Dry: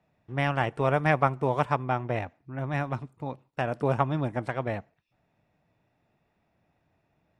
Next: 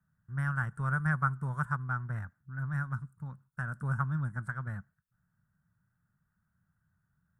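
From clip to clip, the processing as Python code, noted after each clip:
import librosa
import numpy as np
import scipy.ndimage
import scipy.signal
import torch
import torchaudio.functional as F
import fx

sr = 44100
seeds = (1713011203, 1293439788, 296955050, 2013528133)

y = fx.curve_eq(x, sr, hz=(190.0, 290.0, 460.0, 730.0, 1500.0, 2400.0, 5100.0, 8600.0), db=(0, -20, -23, -23, 5, -28, -16, 2))
y = y * 10.0 ** (-1.5 / 20.0)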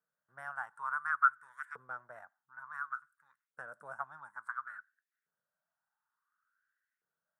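y = fx.filter_lfo_highpass(x, sr, shape='saw_up', hz=0.57, low_hz=450.0, high_hz=2200.0, q=5.8)
y = y * 10.0 ** (-8.5 / 20.0)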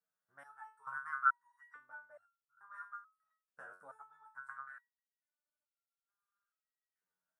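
y = fx.resonator_held(x, sr, hz=2.3, low_hz=92.0, high_hz=1400.0)
y = y * 10.0 ** (5.0 / 20.0)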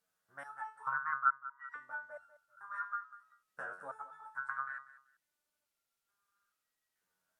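y = fx.echo_feedback(x, sr, ms=193, feedback_pct=21, wet_db=-16.0)
y = fx.env_lowpass_down(y, sr, base_hz=860.0, full_db=-37.0)
y = y * 10.0 ** (9.0 / 20.0)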